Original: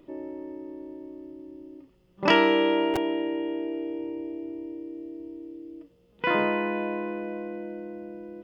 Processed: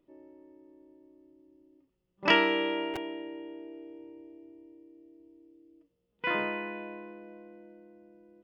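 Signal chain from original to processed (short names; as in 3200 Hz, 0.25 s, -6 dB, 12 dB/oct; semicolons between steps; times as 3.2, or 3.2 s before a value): dynamic EQ 2300 Hz, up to +6 dB, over -40 dBFS, Q 0.85; upward expander 1.5:1, over -38 dBFS; gain -5 dB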